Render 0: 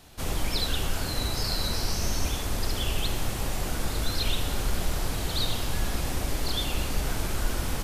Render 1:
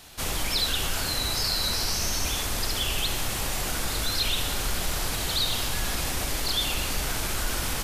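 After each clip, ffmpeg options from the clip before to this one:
-filter_complex "[0:a]tiltshelf=f=850:g=-4.5,asplit=2[a][b];[b]alimiter=limit=-22.5dB:level=0:latency=1,volume=1dB[c];[a][c]amix=inputs=2:normalize=0,volume=-3.5dB"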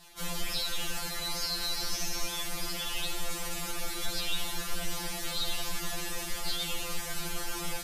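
-af "flanger=delay=1.5:depth=5.3:regen=-53:speed=1.3:shape=triangular,afftfilt=real='re*2.83*eq(mod(b,8),0)':imag='im*2.83*eq(mod(b,8),0)':win_size=2048:overlap=0.75"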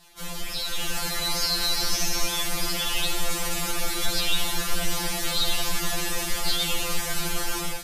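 -af "dynaudnorm=f=540:g=3:m=8dB"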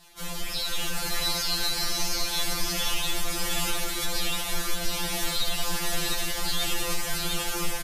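-af "alimiter=limit=-17.5dB:level=0:latency=1:release=356,aecho=1:1:702:0.631"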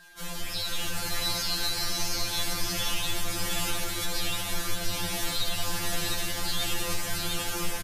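-filter_complex "[0:a]asplit=5[a][b][c][d][e];[b]adelay=132,afreqshift=91,volume=-17dB[f];[c]adelay=264,afreqshift=182,volume=-23.9dB[g];[d]adelay=396,afreqshift=273,volume=-30.9dB[h];[e]adelay=528,afreqshift=364,volume=-37.8dB[i];[a][f][g][h][i]amix=inputs=5:normalize=0,aeval=exprs='val(0)+0.00316*sin(2*PI*1600*n/s)':c=same,volume=-2dB"

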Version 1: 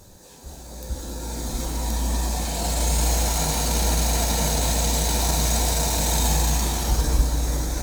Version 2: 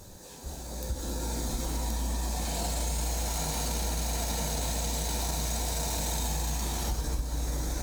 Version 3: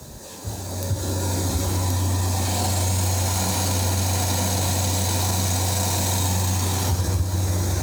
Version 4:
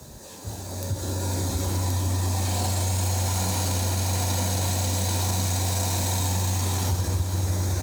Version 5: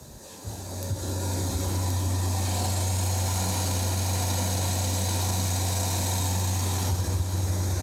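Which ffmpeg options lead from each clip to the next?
-af "acompressor=threshold=-28dB:ratio=6"
-af "afreqshift=35,volume=8.5dB"
-af "aecho=1:1:507:0.299,volume=-4dB"
-af "aresample=32000,aresample=44100,volume=-1.5dB"

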